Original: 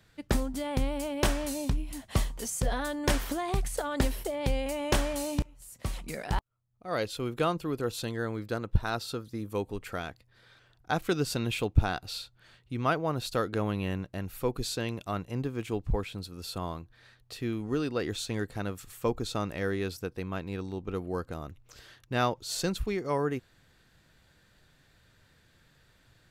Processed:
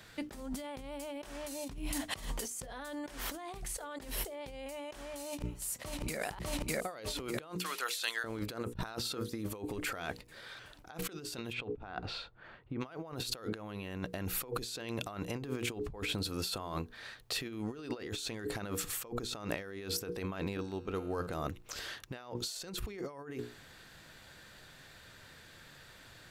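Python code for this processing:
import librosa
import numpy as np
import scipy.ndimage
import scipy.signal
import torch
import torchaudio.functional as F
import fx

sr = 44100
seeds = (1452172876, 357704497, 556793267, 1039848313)

y = fx.echo_throw(x, sr, start_s=5.25, length_s=0.95, ms=600, feedback_pct=60, wet_db=-4.5)
y = fx.highpass(y, sr, hz=1500.0, slope=12, at=(7.55, 8.24))
y = fx.lowpass(y, sr, hz=fx.line((11.52, 2700.0), (12.8, 1200.0)), slope=12, at=(11.52, 12.8), fade=0.02)
y = fx.comb_fb(y, sr, f0_hz=89.0, decay_s=1.7, harmonics='all', damping=0.0, mix_pct=70, at=(20.57, 21.27))
y = fx.low_shelf(y, sr, hz=210.0, db=-8.5)
y = fx.hum_notches(y, sr, base_hz=60, count=8)
y = fx.over_compress(y, sr, threshold_db=-44.0, ratio=-1.0)
y = F.gain(torch.from_numpy(y), 3.0).numpy()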